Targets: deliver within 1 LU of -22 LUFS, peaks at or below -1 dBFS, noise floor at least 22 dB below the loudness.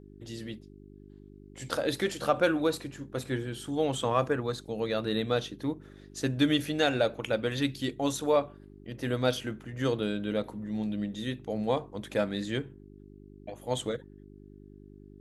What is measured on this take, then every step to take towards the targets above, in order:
hum 50 Hz; harmonics up to 400 Hz; hum level -50 dBFS; loudness -30.5 LUFS; peak -12.0 dBFS; loudness target -22.0 LUFS
-> de-hum 50 Hz, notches 8; gain +8.5 dB

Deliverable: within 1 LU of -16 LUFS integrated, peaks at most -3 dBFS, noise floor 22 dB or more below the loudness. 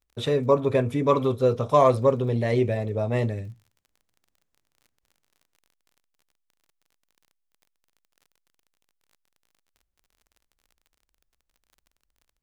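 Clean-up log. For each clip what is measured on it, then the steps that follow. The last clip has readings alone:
ticks 40/s; loudness -23.0 LUFS; peak -6.5 dBFS; loudness target -16.0 LUFS
-> de-click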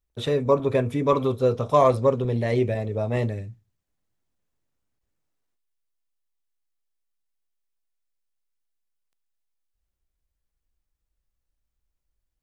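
ticks 0.080/s; loudness -23.0 LUFS; peak -6.0 dBFS; loudness target -16.0 LUFS
-> gain +7 dB; limiter -3 dBFS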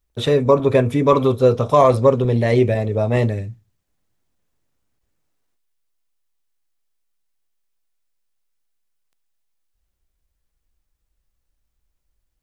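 loudness -16.5 LUFS; peak -3.0 dBFS; noise floor -74 dBFS

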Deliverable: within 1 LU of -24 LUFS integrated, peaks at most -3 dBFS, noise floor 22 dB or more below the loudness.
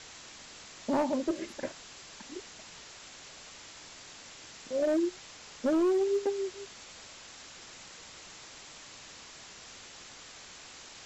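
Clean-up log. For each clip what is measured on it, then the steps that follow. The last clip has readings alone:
clipped 1.1%; flat tops at -23.0 dBFS; noise floor -50 dBFS; noise floor target -54 dBFS; loudness -31.5 LUFS; peak -23.0 dBFS; loudness target -24.0 LUFS
-> clip repair -23 dBFS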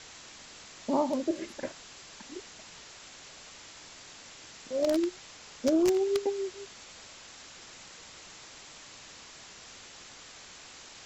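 clipped 0.0%; noise floor -50 dBFS; noise floor target -53 dBFS
-> denoiser 6 dB, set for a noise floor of -50 dBFS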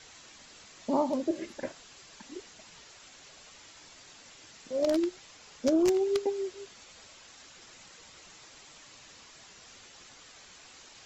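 noise floor -54 dBFS; loudness -30.0 LUFS; peak -14.0 dBFS; loudness target -24.0 LUFS
-> gain +6 dB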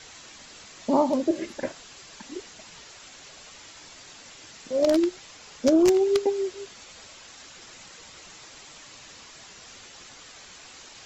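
loudness -24.0 LUFS; peak -8.0 dBFS; noise floor -48 dBFS

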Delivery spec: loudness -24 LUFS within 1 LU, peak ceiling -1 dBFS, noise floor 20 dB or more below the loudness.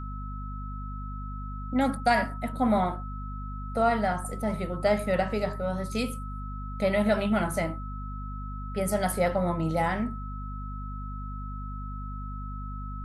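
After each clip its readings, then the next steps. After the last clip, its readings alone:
hum 50 Hz; harmonics up to 250 Hz; hum level -34 dBFS; steady tone 1300 Hz; tone level -41 dBFS; loudness -30.0 LUFS; peak -12.0 dBFS; loudness target -24.0 LUFS
-> notches 50/100/150/200/250 Hz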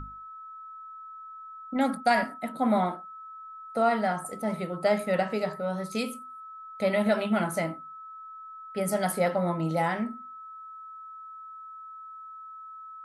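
hum none; steady tone 1300 Hz; tone level -41 dBFS
-> notch 1300 Hz, Q 30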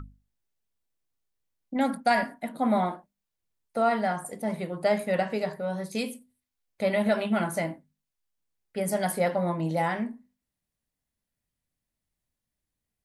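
steady tone none; loudness -28.5 LUFS; peak -12.0 dBFS; loudness target -24.0 LUFS
-> gain +4.5 dB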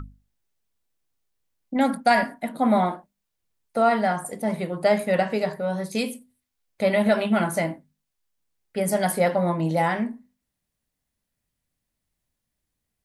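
loudness -24.0 LUFS; peak -7.5 dBFS; noise floor -82 dBFS

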